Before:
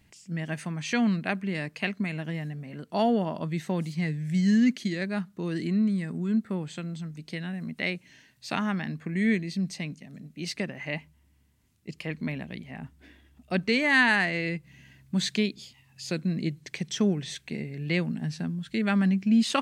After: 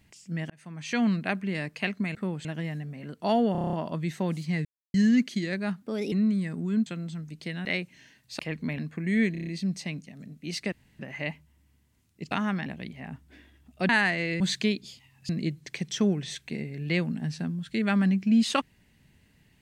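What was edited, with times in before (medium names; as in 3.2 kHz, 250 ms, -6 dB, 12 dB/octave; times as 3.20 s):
0.50–1.05 s: fade in
3.22 s: stutter 0.03 s, 8 plays
4.14–4.43 s: mute
5.31–5.69 s: speed 126%
6.43–6.73 s: move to 2.15 s
7.52–7.78 s: delete
8.52–8.87 s: swap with 11.98–12.37 s
9.41 s: stutter 0.03 s, 6 plays
10.66 s: insert room tone 0.27 s
13.60–14.04 s: delete
14.55–15.14 s: delete
16.03–16.29 s: delete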